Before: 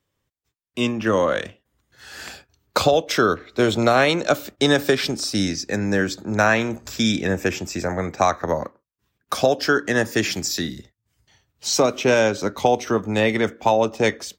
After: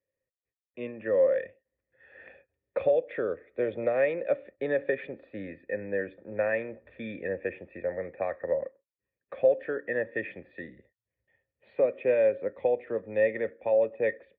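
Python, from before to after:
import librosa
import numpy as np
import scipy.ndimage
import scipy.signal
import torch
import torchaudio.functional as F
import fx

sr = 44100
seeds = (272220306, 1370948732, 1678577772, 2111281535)

y = fx.formant_cascade(x, sr, vowel='e')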